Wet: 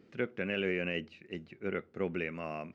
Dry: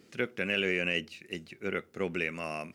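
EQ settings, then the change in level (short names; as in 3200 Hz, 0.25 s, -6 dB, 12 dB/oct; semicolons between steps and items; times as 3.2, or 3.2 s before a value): tape spacing loss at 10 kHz 28 dB; 0.0 dB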